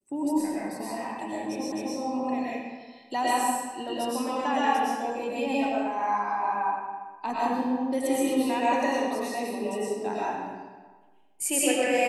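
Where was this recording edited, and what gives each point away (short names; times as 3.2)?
1.72 repeat of the last 0.26 s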